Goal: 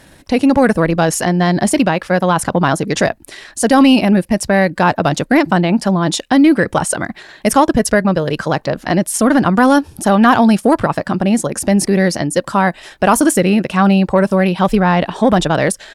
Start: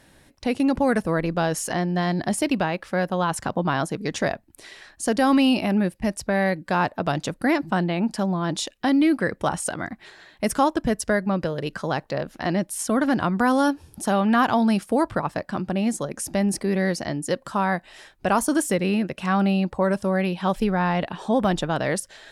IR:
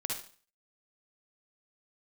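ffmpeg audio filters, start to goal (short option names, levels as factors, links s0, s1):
-af "acontrast=75,atempo=1.4,volume=1.5"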